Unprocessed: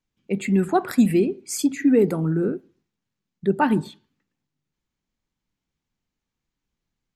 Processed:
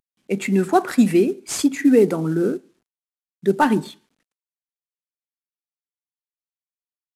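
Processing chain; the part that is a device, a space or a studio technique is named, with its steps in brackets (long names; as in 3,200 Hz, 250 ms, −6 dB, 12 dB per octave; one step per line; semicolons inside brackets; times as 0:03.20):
early wireless headset (high-pass filter 210 Hz 12 dB per octave; variable-slope delta modulation 64 kbit/s)
level +4 dB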